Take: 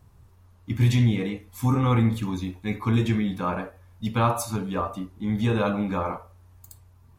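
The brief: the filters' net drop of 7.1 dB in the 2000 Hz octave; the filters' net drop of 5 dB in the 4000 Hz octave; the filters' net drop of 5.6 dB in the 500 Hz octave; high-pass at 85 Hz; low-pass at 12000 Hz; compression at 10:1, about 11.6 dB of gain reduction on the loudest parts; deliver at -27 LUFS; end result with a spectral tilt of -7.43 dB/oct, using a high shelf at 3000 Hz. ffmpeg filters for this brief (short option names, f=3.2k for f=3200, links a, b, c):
-af "highpass=85,lowpass=12k,equalizer=f=500:t=o:g=-6.5,equalizer=f=2k:t=o:g=-9,highshelf=f=3k:g=3.5,equalizer=f=4k:t=o:g=-5.5,acompressor=threshold=-29dB:ratio=10,volume=8dB"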